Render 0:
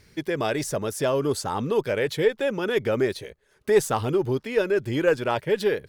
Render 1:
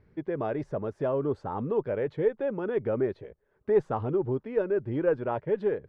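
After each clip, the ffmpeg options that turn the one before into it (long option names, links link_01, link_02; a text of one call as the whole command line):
ffmpeg -i in.wav -af "lowpass=1100,volume=-4dB" out.wav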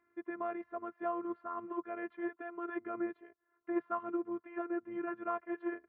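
ffmpeg -i in.wav -af "afftfilt=real='hypot(re,im)*cos(PI*b)':imag='0':win_size=512:overlap=0.75,highpass=250,equalizer=frequency=260:width_type=q:width=4:gain=-6,equalizer=frequency=370:width_type=q:width=4:gain=-8,equalizer=frequency=550:width_type=q:width=4:gain=-8,equalizer=frequency=810:width_type=q:width=4:gain=-8,equalizer=frequency=1200:width_type=q:width=4:gain=8,lowpass=frequency=2300:width=0.5412,lowpass=frequency=2300:width=1.3066,volume=1dB" out.wav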